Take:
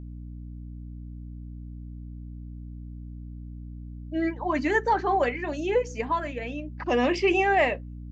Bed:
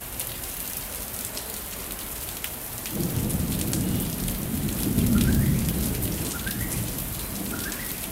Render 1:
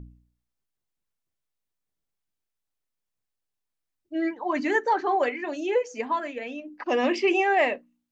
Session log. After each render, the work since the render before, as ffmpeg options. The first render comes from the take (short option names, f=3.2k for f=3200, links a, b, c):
-af "bandreject=f=60:t=h:w=4,bandreject=f=120:t=h:w=4,bandreject=f=180:t=h:w=4,bandreject=f=240:t=h:w=4,bandreject=f=300:t=h:w=4"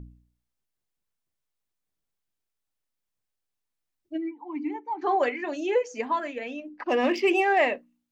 -filter_complex "[0:a]asplit=3[a][b][c];[a]afade=t=out:st=4.16:d=0.02[d];[b]asplit=3[e][f][g];[e]bandpass=f=300:t=q:w=8,volume=0dB[h];[f]bandpass=f=870:t=q:w=8,volume=-6dB[i];[g]bandpass=f=2.24k:t=q:w=8,volume=-9dB[j];[h][i][j]amix=inputs=3:normalize=0,afade=t=in:st=4.16:d=0.02,afade=t=out:st=5.01:d=0.02[k];[c]afade=t=in:st=5.01:d=0.02[l];[d][k][l]amix=inputs=3:normalize=0,asplit=3[m][n][o];[m]afade=t=out:st=6.68:d=0.02[p];[n]adynamicsmooth=sensitivity=4.5:basefreq=5.6k,afade=t=in:st=6.68:d=0.02,afade=t=out:st=7.58:d=0.02[q];[o]afade=t=in:st=7.58:d=0.02[r];[p][q][r]amix=inputs=3:normalize=0"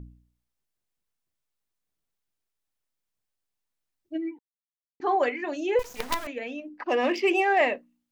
-filter_complex "[0:a]asettb=1/sr,asplit=3[a][b][c];[a]atrim=end=5.794[d];[b]atrim=start=5.79:end=6.27,asetpts=PTS-STARTPTS,afade=t=in:d=0.004:c=qsin,afade=t=out:st=0.476:d=0.004:c=qsin,acrusher=bits=4:dc=4:mix=0:aa=0.000001[e];[c]atrim=start=6.266[f];[d][e]acrossfade=d=0.004:c1=hsin:c2=qsin[g];[g][f]acrossfade=d=0.004:c1=qsin:c2=hsin,asettb=1/sr,asplit=3[h][i][j];[h]atrim=end=6.864[k];[i]atrim=start=6.86:end=7.61,asetpts=PTS-STARTPTS,afade=t=in:d=0.004:c=qsin,afade=t=out:st=0.746:d=0.004:c=qsin,highpass=270[l];[j]atrim=start=7.606[m];[k][l]acrossfade=d=0.004:c1=hsin:c2=qsin[n];[n][m]acrossfade=d=0.004:c1=qsin:c2=hsin,asplit=3[o][p][q];[o]atrim=end=4.39,asetpts=PTS-STARTPTS,afade=t=out:st=4.386:d=0.004:c=hsin[r];[p]atrim=start=4.39:end=5,asetpts=PTS-STARTPTS,volume=0[s];[q]atrim=start=5,asetpts=PTS-STARTPTS,afade=t=in:d=0.004:c=hsin[t];[r][s][t]concat=n=3:v=0:a=1"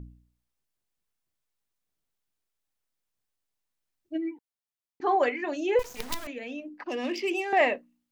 -filter_complex "[0:a]asettb=1/sr,asplit=3[a][b][c];[a]atrim=end=5.864[d];[b]atrim=start=5.86:end=7.53,asetpts=PTS-STARTPTS,afade=t=in:d=0.004:c=qsin,afade=t=out:st=1.666:d=0.004:c=qsin,acrossover=split=320|3000[e][f][g];[f]acompressor=threshold=-39dB:ratio=3:attack=3.2:release=140:knee=2.83:detection=peak[h];[e][h][g]amix=inputs=3:normalize=0[i];[c]atrim=start=7.526[j];[d][i]acrossfade=d=0.004:c1=hsin:c2=qsin[k];[k][j]acrossfade=d=0.004:c1=qsin:c2=hsin"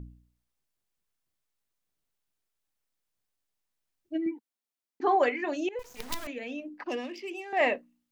-filter_complex "[0:a]asettb=1/sr,asplit=3[a][b][c];[a]atrim=end=4.264[d];[b]atrim=start=4.26:end=5.08,asetpts=PTS-STARTPTS,afade=t=in:d=0.004:c=qsin,afade=t=out:st=0.816:d=0.004:c=qsin,lowshelf=f=180:t=q:w=3:g=-9[e];[c]atrim=start=5.076[f];[d][e]acrossfade=d=0.004:c1=hsin:c2=qsin[g];[g][f]acrossfade=d=0.004:c1=qsin:c2=hsin,asplit=4[h][i][j][k];[h]atrim=end=5.69,asetpts=PTS-STARTPTS,afade=t=out:st=5.686:d=0.004:c=hsin:silence=0.0668344[l];[i]atrim=start=5.69:end=7.08,asetpts=PTS-STARTPTS,afade=t=in:d=0.54:silence=0.0668344,afade=t=out:st=1.25:d=0.14:silence=0.334965[m];[j]atrim=start=7.08:end=7.53,asetpts=PTS-STARTPTS,volume=-9.5dB[n];[k]atrim=start=7.53,asetpts=PTS-STARTPTS,afade=t=in:d=0.14:silence=0.334965[o];[l][m][n][o]concat=n=4:v=0:a=1"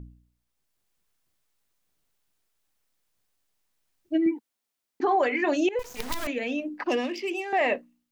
-af "dynaudnorm=f=180:g=7:m=8dB,alimiter=limit=-15.5dB:level=0:latency=1:release=69"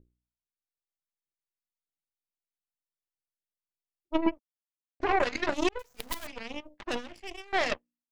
-af "aeval=exprs='0.178*(cos(1*acos(clip(val(0)/0.178,-1,1)))-cos(1*PI/2))+0.0355*(cos(2*acos(clip(val(0)/0.178,-1,1)))-cos(2*PI/2))+0.0562*(cos(3*acos(clip(val(0)/0.178,-1,1)))-cos(3*PI/2))+0.00398*(cos(6*acos(clip(val(0)/0.178,-1,1)))-cos(6*PI/2))':c=same"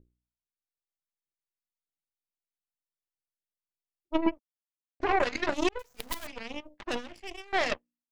-af anull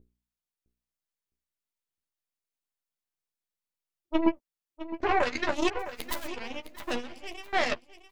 -filter_complex "[0:a]asplit=2[a][b];[b]adelay=12,volume=-7dB[c];[a][c]amix=inputs=2:normalize=0,aecho=1:1:660|1320|1980:0.224|0.0582|0.0151"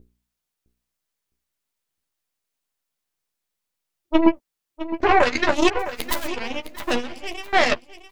-af "volume=9dB,alimiter=limit=-2dB:level=0:latency=1"